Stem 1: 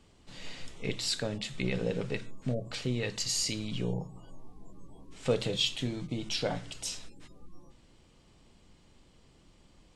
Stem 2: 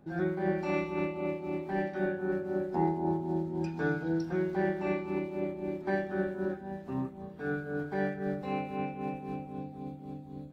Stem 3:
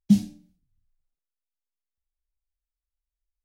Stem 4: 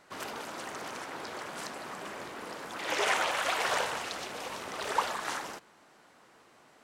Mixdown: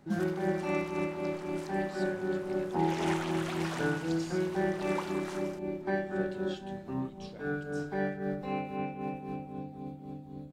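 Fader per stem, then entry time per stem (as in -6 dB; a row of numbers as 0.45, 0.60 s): -20.0, -0.5, -16.0, -9.5 dB; 0.90, 0.00, 0.00, 0.00 s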